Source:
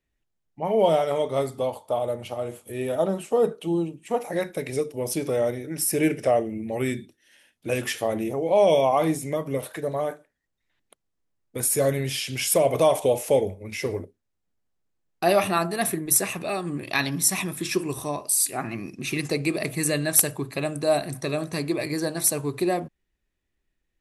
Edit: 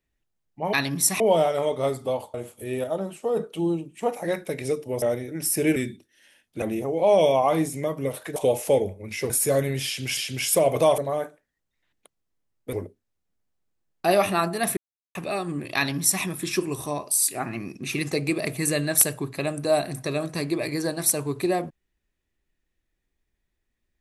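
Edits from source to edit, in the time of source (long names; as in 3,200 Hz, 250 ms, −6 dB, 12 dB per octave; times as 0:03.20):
0:01.87–0:02.42: remove
0:02.92–0:03.45: clip gain −4.5 dB
0:05.10–0:05.38: remove
0:06.12–0:06.85: remove
0:07.71–0:08.11: remove
0:09.85–0:11.60: swap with 0:12.97–0:13.91
0:12.16–0:12.47: repeat, 2 plays
0:15.95–0:16.33: silence
0:16.94–0:17.41: duplicate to 0:00.73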